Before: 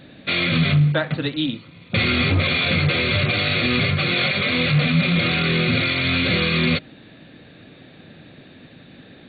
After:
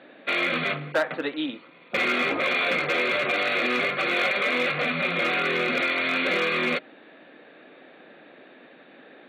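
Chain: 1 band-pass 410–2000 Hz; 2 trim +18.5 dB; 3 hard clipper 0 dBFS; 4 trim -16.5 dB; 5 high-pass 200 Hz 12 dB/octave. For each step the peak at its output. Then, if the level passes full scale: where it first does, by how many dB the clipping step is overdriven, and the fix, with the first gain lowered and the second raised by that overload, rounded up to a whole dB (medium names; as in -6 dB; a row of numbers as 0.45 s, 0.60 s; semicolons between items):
-11.0 dBFS, +7.5 dBFS, 0.0 dBFS, -16.5 dBFS, -13.0 dBFS; step 2, 7.5 dB; step 2 +10.5 dB, step 4 -8.5 dB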